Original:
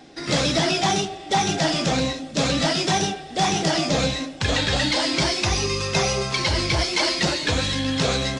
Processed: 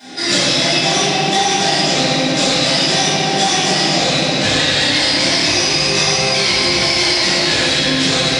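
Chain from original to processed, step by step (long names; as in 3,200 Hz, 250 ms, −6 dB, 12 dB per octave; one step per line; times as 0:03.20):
Bessel high-pass filter 160 Hz, order 2
high-shelf EQ 2,300 Hz +11.5 dB
delay that swaps between a low-pass and a high-pass 194 ms, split 1,400 Hz, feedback 82%, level −12 dB
convolution reverb RT60 2.5 s, pre-delay 3 ms, DRR −18.5 dB
downward compressor 6 to 1, threshold −5 dBFS, peak gain reduction 12.5 dB
level −7.5 dB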